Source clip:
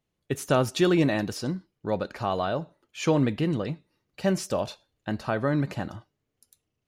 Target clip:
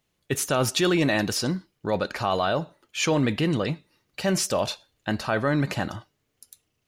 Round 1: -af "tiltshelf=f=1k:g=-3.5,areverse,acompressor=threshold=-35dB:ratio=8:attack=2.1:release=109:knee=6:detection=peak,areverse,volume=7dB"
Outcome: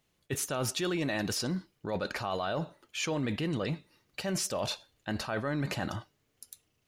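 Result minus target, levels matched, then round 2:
compressor: peak gain reduction +10 dB
-af "tiltshelf=f=1k:g=-3.5,areverse,acompressor=threshold=-23.5dB:ratio=8:attack=2.1:release=109:knee=6:detection=peak,areverse,volume=7dB"

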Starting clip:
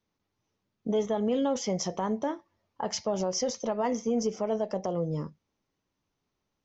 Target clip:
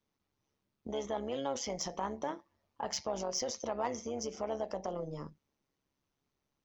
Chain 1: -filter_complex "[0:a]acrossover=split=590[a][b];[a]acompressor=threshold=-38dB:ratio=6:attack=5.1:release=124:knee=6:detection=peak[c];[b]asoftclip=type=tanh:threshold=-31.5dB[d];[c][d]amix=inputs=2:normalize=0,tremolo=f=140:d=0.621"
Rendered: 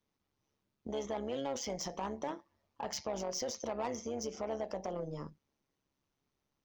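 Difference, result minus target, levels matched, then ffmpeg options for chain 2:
soft clip: distortion +13 dB
-filter_complex "[0:a]acrossover=split=590[a][b];[a]acompressor=threshold=-38dB:ratio=6:attack=5.1:release=124:knee=6:detection=peak[c];[b]asoftclip=type=tanh:threshold=-22dB[d];[c][d]amix=inputs=2:normalize=0,tremolo=f=140:d=0.621"

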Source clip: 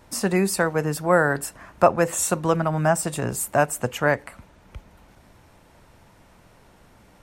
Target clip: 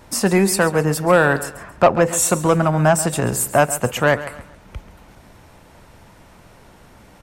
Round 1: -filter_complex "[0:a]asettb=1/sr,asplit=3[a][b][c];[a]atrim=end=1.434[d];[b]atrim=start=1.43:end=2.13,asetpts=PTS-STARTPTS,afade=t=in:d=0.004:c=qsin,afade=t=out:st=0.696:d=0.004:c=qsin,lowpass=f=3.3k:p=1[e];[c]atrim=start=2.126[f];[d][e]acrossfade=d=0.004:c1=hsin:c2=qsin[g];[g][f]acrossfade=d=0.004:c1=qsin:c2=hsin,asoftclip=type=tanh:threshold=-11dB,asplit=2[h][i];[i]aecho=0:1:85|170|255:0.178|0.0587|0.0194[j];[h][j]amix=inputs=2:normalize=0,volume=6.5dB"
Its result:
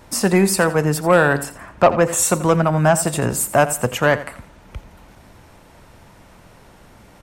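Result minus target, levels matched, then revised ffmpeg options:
echo 51 ms early
-filter_complex "[0:a]asettb=1/sr,asplit=3[a][b][c];[a]atrim=end=1.434[d];[b]atrim=start=1.43:end=2.13,asetpts=PTS-STARTPTS,afade=t=in:d=0.004:c=qsin,afade=t=out:st=0.696:d=0.004:c=qsin,lowpass=f=3.3k:p=1[e];[c]atrim=start=2.126[f];[d][e]acrossfade=d=0.004:c1=hsin:c2=qsin[g];[g][f]acrossfade=d=0.004:c1=qsin:c2=hsin,asoftclip=type=tanh:threshold=-11dB,asplit=2[h][i];[i]aecho=0:1:136|272|408:0.178|0.0587|0.0194[j];[h][j]amix=inputs=2:normalize=0,volume=6.5dB"

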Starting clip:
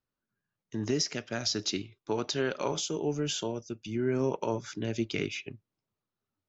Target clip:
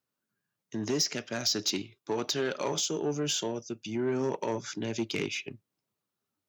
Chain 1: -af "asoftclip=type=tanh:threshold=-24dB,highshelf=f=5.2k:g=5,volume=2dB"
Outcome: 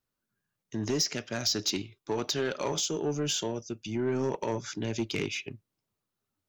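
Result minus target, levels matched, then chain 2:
125 Hz band +3.0 dB
-af "asoftclip=type=tanh:threshold=-24dB,highpass=130,highshelf=f=5.2k:g=5,volume=2dB"

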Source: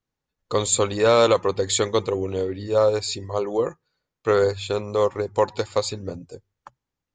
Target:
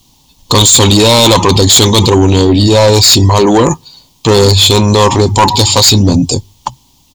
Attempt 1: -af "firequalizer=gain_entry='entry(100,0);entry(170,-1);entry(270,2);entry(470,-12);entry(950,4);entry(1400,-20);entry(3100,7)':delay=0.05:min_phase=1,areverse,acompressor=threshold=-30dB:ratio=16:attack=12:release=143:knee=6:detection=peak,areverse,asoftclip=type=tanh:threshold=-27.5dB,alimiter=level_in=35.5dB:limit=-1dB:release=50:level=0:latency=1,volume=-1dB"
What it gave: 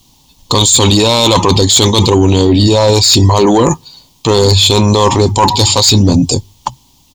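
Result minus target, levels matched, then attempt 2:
compressor: peak gain reduction +8 dB
-af "firequalizer=gain_entry='entry(100,0);entry(170,-1);entry(270,2);entry(470,-12);entry(950,4);entry(1400,-20);entry(3100,7)':delay=0.05:min_phase=1,areverse,acompressor=threshold=-21.5dB:ratio=16:attack=12:release=143:knee=6:detection=peak,areverse,asoftclip=type=tanh:threshold=-27.5dB,alimiter=level_in=35.5dB:limit=-1dB:release=50:level=0:latency=1,volume=-1dB"

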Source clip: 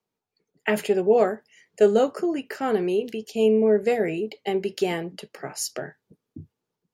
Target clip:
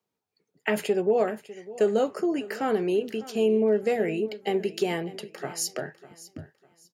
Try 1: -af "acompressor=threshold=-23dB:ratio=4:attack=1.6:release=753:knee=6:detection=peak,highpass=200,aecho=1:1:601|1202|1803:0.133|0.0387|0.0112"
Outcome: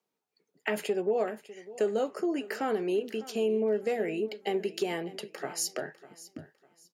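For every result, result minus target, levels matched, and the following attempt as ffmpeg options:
compressor: peak gain reduction +5 dB; 125 Hz band -3.0 dB
-af "acompressor=threshold=-16dB:ratio=4:attack=1.6:release=753:knee=6:detection=peak,highpass=200,aecho=1:1:601|1202|1803:0.133|0.0387|0.0112"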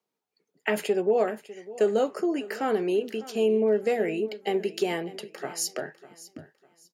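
125 Hz band -3.5 dB
-af "acompressor=threshold=-16dB:ratio=4:attack=1.6:release=753:knee=6:detection=peak,highpass=59,aecho=1:1:601|1202|1803:0.133|0.0387|0.0112"

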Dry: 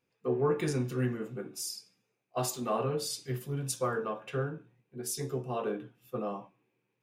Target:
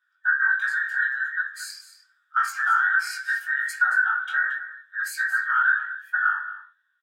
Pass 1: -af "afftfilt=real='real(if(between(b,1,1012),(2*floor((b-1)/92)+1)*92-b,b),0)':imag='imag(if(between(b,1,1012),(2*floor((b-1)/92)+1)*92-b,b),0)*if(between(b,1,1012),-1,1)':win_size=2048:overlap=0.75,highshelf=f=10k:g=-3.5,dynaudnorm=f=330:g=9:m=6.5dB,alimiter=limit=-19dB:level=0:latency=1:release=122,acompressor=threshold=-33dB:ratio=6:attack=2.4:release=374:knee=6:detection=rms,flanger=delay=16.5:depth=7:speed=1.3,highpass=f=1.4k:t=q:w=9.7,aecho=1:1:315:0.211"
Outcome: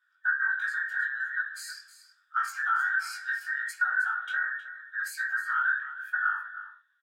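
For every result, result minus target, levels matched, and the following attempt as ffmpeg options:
echo 89 ms late; compressor: peak gain reduction +6.5 dB
-af "afftfilt=real='real(if(between(b,1,1012),(2*floor((b-1)/92)+1)*92-b,b),0)':imag='imag(if(between(b,1,1012),(2*floor((b-1)/92)+1)*92-b,b),0)*if(between(b,1,1012),-1,1)':win_size=2048:overlap=0.75,highshelf=f=10k:g=-3.5,dynaudnorm=f=330:g=9:m=6.5dB,alimiter=limit=-19dB:level=0:latency=1:release=122,acompressor=threshold=-33dB:ratio=6:attack=2.4:release=374:knee=6:detection=rms,flanger=delay=16.5:depth=7:speed=1.3,highpass=f=1.4k:t=q:w=9.7,aecho=1:1:226:0.211"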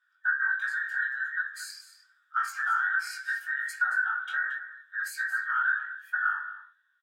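compressor: peak gain reduction +6.5 dB
-af "afftfilt=real='real(if(between(b,1,1012),(2*floor((b-1)/92)+1)*92-b,b),0)':imag='imag(if(between(b,1,1012),(2*floor((b-1)/92)+1)*92-b,b),0)*if(between(b,1,1012),-1,1)':win_size=2048:overlap=0.75,highshelf=f=10k:g=-3.5,dynaudnorm=f=330:g=9:m=6.5dB,alimiter=limit=-19dB:level=0:latency=1:release=122,acompressor=threshold=-25dB:ratio=6:attack=2.4:release=374:knee=6:detection=rms,flanger=delay=16.5:depth=7:speed=1.3,highpass=f=1.4k:t=q:w=9.7,aecho=1:1:226:0.211"

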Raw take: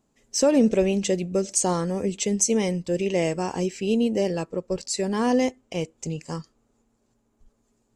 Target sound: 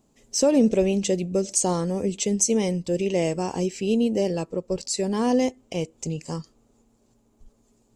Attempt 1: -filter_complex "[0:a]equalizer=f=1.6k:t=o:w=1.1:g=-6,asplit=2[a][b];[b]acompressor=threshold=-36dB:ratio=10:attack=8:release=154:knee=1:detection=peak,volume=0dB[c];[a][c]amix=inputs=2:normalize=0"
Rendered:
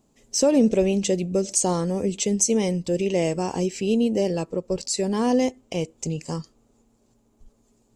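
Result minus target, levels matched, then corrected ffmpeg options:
compressor: peak gain reduction -7.5 dB
-filter_complex "[0:a]equalizer=f=1.6k:t=o:w=1.1:g=-6,asplit=2[a][b];[b]acompressor=threshold=-44.5dB:ratio=10:attack=8:release=154:knee=1:detection=peak,volume=0dB[c];[a][c]amix=inputs=2:normalize=0"

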